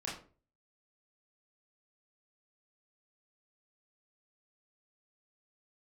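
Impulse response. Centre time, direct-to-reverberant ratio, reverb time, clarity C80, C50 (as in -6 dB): 37 ms, -6.5 dB, 0.40 s, 11.0 dB, 6.0 dB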